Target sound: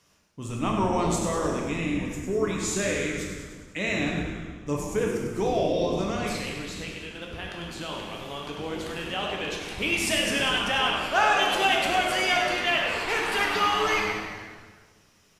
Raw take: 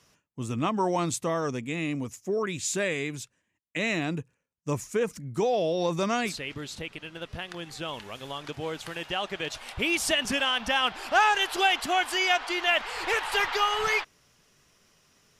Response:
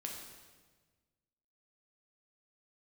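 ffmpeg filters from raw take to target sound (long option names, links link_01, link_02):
-filter_complex "[0:a]asettb=1/sr,asplit=3[link_01][link_02][link_03];[link_01]atrim=end=5.844[link_04];[link_02]atrim=start=5.84:end=6.26,asetpts=PTS-STARTPTS,afade=type=in:duration=0.004:curve=qsin,afade=type=out:start_time=0.416:duration=0.004:curve=qsin,acompressor=threshold=-27dB:ratio=6[link_05];[link_03]atrim=start=6.256[link_06];[link_04][link_05]acrossfade=duration=0.004:curve1=hsin:curve2=qsin[link_07];[link_07][link_06]acrossfade=duration=0.004:curve1=qsin:curve2=hsin,asplit=9[link_08][link_09][link_10][link_11][link_12][link_13][link_14][link_15][link_16];[link_09]adelay=99,afreqshift=-110,volume=-8dB[link_17];[link_10]adelay=198,afreqshift=-220,volume=-12.3dB[link_18];[link_11]adelay=297,afreqshift=-330,volume=-16.6dB[link_19];[link_12]adelay=396,afreqshift=-440,volume=-20.9dB[link_20];[link_13]adelay=495,afreqshift=-550,volume=-25.2dB[link_21];[link_14]adelay=594,afreqshift=-660,volume=-29.5dB[link_22];[link_15]adelay=693,afreqshift=-770,volume=-33.8dB[link_23];[link_16]adelay=792,afreqshift=-880,volume=-38.1dB[link_24];[link_08][link_17][link_18][link_19][link_20][link_21][link_22][link_23][link_24]amix=inputs=9:normalize=0[link_25];[1:a]atrim=start_sample=2205[link_26];[link_25][link_26]afir=irnorm=-1:irlink=0,volume=2dB"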